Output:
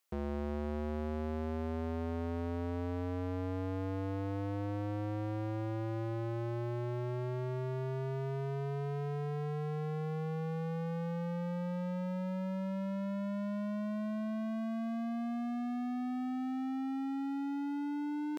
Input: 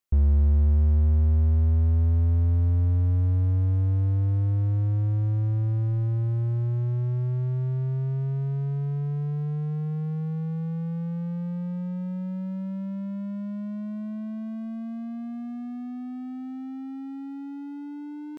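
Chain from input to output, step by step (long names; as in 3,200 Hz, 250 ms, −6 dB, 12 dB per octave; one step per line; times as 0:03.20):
high-pass filter 370 Hz 12 dB per octave
level +6 dB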